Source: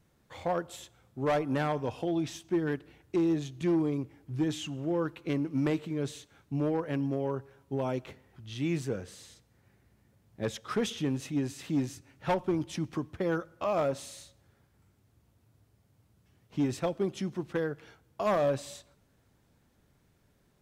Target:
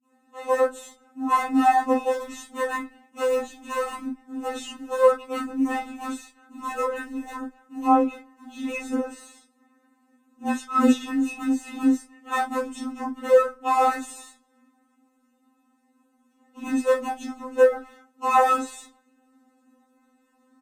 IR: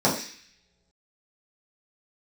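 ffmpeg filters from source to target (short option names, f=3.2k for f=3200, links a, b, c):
-filter_complex "[0:a]acrossover=split=200[a][b];[b]adelay=40[c];[a][c]amix=inputs=2:normalize=0,asplit=2[d][e];[e]acrusher=bits=5:dc=4:mix=0:aa=0.000001,volume=-5.5dB[f];[d][f]amix=inputs=2:normalize=0,afreqshift=13[g];[1:a]atrim=start_sample=2205,atrim=end_sample=3969,asetrate=66150,aresample=44100[h];[g][h]afir=irnorm=-1:irlink=0,afftfilt=real='re*3.46*eq(mod(b,12),0)':imag='im*3.46*eq(mod(b,12),0)':win_size=2048:overlap=0.75,volume=-5.5dB"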